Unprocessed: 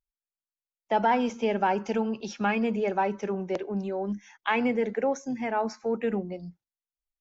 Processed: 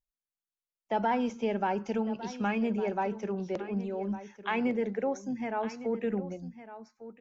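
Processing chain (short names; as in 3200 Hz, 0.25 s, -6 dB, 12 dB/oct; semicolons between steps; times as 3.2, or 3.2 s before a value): low shelf 320 Hz +5.5 dB; on a send: echo 1.156 s -14 dB; on the sum: gain -6 dB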